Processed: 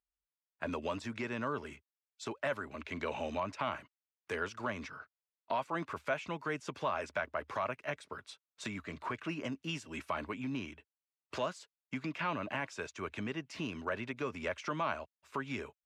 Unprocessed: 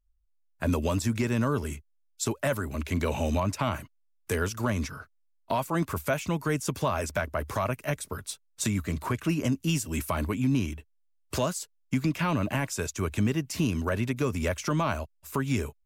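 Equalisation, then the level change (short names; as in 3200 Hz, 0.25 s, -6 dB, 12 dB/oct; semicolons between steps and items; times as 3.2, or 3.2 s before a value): HPF 650 Hz 6 dB/oct; LPF 3200 Hz 12 dB/oct; -3.5 dB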